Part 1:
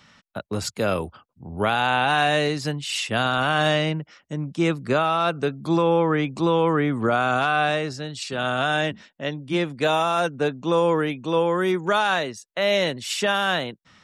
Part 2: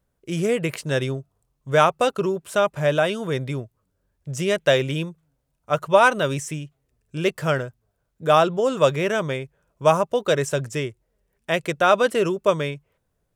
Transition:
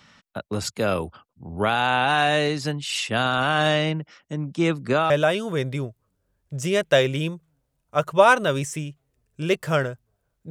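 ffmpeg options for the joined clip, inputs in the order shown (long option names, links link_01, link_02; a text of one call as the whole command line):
ffmpeg -i cue0.wav -i cue1.wav -filter_complex "[0:a]apad=whole_dur=10.5,atrim=end=10.5,atrim=end=5.102[link_01];[1:a]atrim=start=2.848:end=8.25[link_02];[link_01][link_02]acrossfade=duration=0.004:curve1=hsin:curve2=hsin" out.wav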